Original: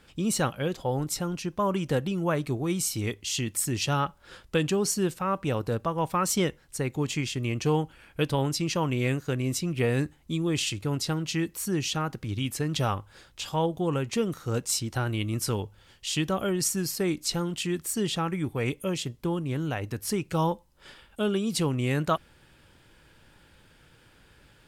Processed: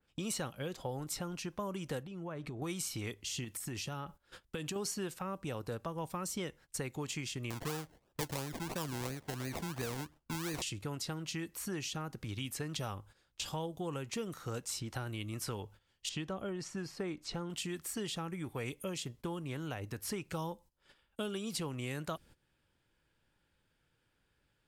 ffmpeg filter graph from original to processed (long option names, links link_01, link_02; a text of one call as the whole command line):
ffmpeg -i in.wav -filter_complex "[0:a]asettb=1/sr,asplit=3[link_01][link_02][link_03];[link_01]atrim=end=2.034[link_04];[link_02]atrim=start=2.03:end=2.62,asetpts=PTS-STARTPTS,afade=type=in:duration=0.004:curve=qsin,afade=type=out:start_time=0.586:duration=0.004:curve=qsin,aemphasis=mode=reproduction:type=50kf,acompressor=threshold=-33dB:ratio=10:attack=3.2:release=140:knee=1:detection=peak[link_05];[link_03]atrim=start=2.616[link_06];[link_04][link_05]acrossfade=duration=0.004:curve1=hsin:curve2=qsin[link_07];[link_07][link_06]acrossfade=duration=0.004:curve1=qsin:curve2=hsin,asettb=1/sr,asplit=3[link_08][link_09][link_10];[link_08]atrim=end=3.444[link_11];[link_09]atrim=start=3.44:end=4.76,asetpts=PTS-STARTPTS,afade=type=in:duration=0.004:curve=qsin,afade=type=out:start_time=1.316:duration=0.004:curve=qsin,highshelf=frequency=12000:gain=8,acompressor=threshold=-29dB:ratio=6:attack=3.2:release=140:knee=1:detection=peak[link_12];[link_10]atrim=start=4.756[link_13];[link_11][link_12]acrossfade=duration=0.004:curve1=hsin:curve2=qsin[link_14];[link_14][link_13]acrossfade=duration=0.004:curve1=qsin:curve2=hsin,asettb=1/sr,asplit=3[link_15][link_16][link_17];[link_15]atrim=end=7.504[link_18];[link_16]atrim=start=7.5:end=10.62,asetpts=PTS-STARTPTS,afade=type=in:duration=0.004:curve=qsin,afade=type=out:start_time=3.116:duration=0.004:curve=qsin,tremolo=f=1.4:d=0.33,acrusher=samples=29:mix=1:aa=0.000001:lfo=1:lforange=17.4:lforate=2.9[link_19];[link_17]atrim=start=10.616[link_20];[link_18][link_19]acrossfade=duration=0.004:curve1=hsin:curve2=qsin[link_21];[link_21][link_20]acrossfade=duration=0.004:curve1=qsin:curve2=hsin,asettb=1/sr,asplit=3[link_22][link_23][link_24];[link_22]atrim=end=16.094[link_25];[link_23]atrim=start=16.09:end=17.5,asetpts=PTS-STARTPTS,afade=type=in:duration=0.004:curve=qsin,afade=type=out:start_time=1.406:duration=0.004:curve=qsin,lowpass=9800,acrossover=split=6200[link_26][link_27];[link_27]acompressor=threshold=-44dB:ratio=4:attack=1:release=60[link_28];[link_26][link_28]amix=inputs=2:normalize=0,highshelf=frequency=2700:gain=-11.5[link_29];[link_24]atrim=start=17.496[link_30];[link_25][link_29]acrossfade=duration=0.004:curve1=hsin:curve2=qsin[link_31];[link_31][link_30]acrossfade=duration=0.004:curve1=qsin:curve2=hsin,agate=range=-18dB:threshold=-45dB:ratio=16:detection=peak,acrossover=split=560|4200[link_32][link_33][link_34];[link_32]acompressor=threshold=-39dB:ratio=4[link_35];[link_33]acompressor=threshold=-42dB:ratio=4[link_36];[link_34]acompressor=threshold=-36dB:ratio=4[link_37];[link_35][link_36][link_37]amix=inputs=3:normalize=0,adynamicequalizer=threshold=0.00251:dfrequency=2600:dqfactor=0.7:tfrequency=2600:tqfactor=0.7:attack=5:release=100:ratio=0.375:range=2:mode=cutabove:tftype=highshelf,volume=-1.5dB" out.wav